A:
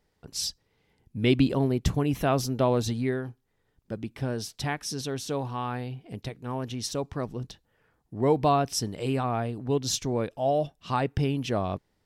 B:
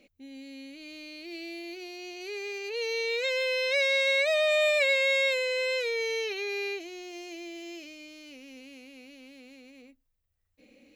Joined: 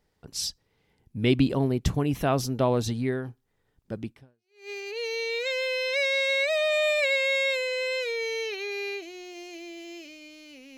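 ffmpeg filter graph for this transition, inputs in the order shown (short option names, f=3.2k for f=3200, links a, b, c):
-filter_complex "[0:a]apad=whole_dur=10.77,atrim=end=10.77,atrim=end=4.7,asetpts=PTS-STARTPTS[a];[1:a]atrim=start=1.88:end=8.55,asetpts=PTS-STARTPTS[b];[a][b]acrossfade=d=0.6:c1=exp:c2=exp"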